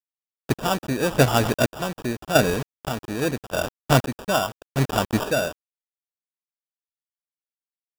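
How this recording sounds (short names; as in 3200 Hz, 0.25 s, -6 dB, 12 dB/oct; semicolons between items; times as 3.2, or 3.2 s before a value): a quantiser's noise floor 6-bit, dither none; chopped level 0.85 Hz, depth 65%, duty 45%; aliases and images of a low sample rate 2100 Hz, jitter 0%; AAC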